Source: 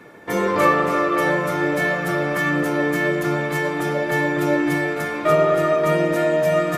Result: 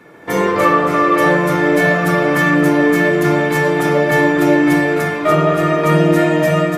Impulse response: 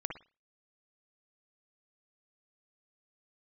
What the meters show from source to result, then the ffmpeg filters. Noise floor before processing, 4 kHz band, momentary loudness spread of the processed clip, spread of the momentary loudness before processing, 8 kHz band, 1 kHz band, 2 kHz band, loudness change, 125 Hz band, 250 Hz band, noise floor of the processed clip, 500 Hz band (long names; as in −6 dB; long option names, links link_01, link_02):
−26 dBFS, +6.0 dB, 2 LU, 5 LU, +5.5 dB, +6.0 dB, +6.0 dB, +6.0 dB, +8.5 dB, +8.5 dB, −21 dBFS, +5.0 dB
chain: -filter_complex "[0:a]dynaudnorm=framelen=100:gausssize=5:maxgain=7.5dB[link_01];[1:a]atrim=start_sample=2205,atrim=end_sample=3969[link_02];[link_01][link_02]afir=irnorm=-1:irlink=0,volume=1dB"